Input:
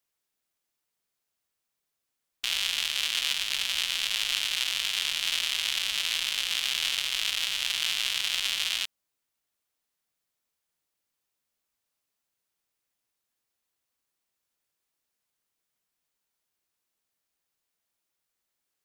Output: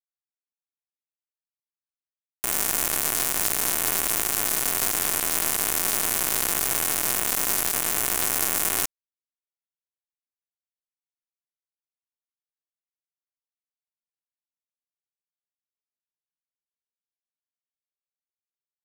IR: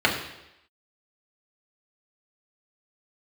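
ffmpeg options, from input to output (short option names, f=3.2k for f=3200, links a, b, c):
-af "afftfilt=real='re*gte(hypot(re,im),0.00398)':imag='im*gte(hypot(re,im),0.00398)':win_size=1024:overlap=0.75,adynamicequalizer=threshold=0.00224:dfrequency=8000:dqfactor=3.7:tfrequency=8000:tqfactor=3.7:attack=5:release=100:ratio=0.375:range=2.5:mode=cutabove:tftype=bell,afftfilt=real='re*lt(hypot(re,im),0.0126)':imag='im*lt(hypot(re,im),0.0126)':win_size=1024:overlap=0.75,aeval=exprs='val(0)*gte(abs(val(0)),0.015)':c=same,equalizer=f=12k:t=o:w=2.1:g=7,aecho=1:1:2.8:0.46,aeval=exprs='0.168*(cos(1*acos(clip(val(0)/0.168,-1,1)))-cos(1*PI/2))+0.0422*(cos(4*acos(clip(val(0)/0.168,-1,1)))-cos(4*PI/2))+0.0596*(cos(7*acos(clip(val(0)/0.168,-1,1)))-cos(7*PI/2))':c=same,alimiter=level_in=27.5dB:limit=-1dB:release=50:level=0:latency=1,volume=-1dB"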